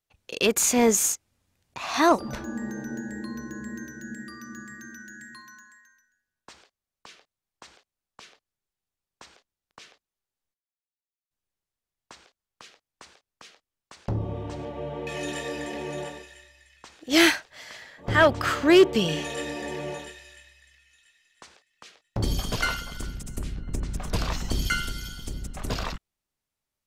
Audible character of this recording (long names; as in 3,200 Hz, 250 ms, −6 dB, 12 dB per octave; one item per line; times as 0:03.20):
background noise floor −91 dBFS
spectral slope −3.5 dB per octave